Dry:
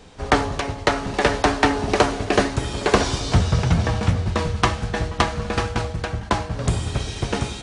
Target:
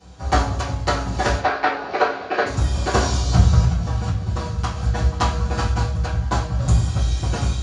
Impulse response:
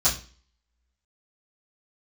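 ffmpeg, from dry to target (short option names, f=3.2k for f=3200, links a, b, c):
-filter_complex "[0:a]asettb=1/sr,asplit=3[a][b][c];[a]atrim=end=1.384[d];[b]atrim=start=1.38:end=2.46,asetpts=PTS-STARTPTS,afade=t=in:d=0.004:c=qsin,afade=t=out:st=1.076:d=0.004:c=qsin,highpass=430,equalizer=f=440:t=q:w=4:g=7,equalizer=f=1.5k:t=q:w=4:g=4,equalizer=f=2.2k:t=q:w=4:g=4,equalizer=f=3.2k:t=q:w=4:g=-4,lowpass=f=4k:w=0.5412,lowpass=f=4k:w=1.3066[e];[c]atrim=start=2.456[f];[d][e]acrossfade=d=0.004:c1=hsin:c2=qsin[g];[g][f]acrossfade=d=0.004:c1=qsin:c2=hsin,asplit=3[h][i][j];[h]afade=t=out:st=3.62:d=0.02[k];[i]acompressor=threshold=-22dB:ratio=6,afade=t=in:st=3.62:d=0.02,afade=t=out:st=4.75:d=0.02[l];[j]afade=t=in:st=4.75:d=0.02[m];[k][l][m]amix=inputs=3:normalize=0[n];[1:a]atrim=start_sample=2205[o];[n][o]afir=irnorm=-1:irlink=0,volume=-15dB"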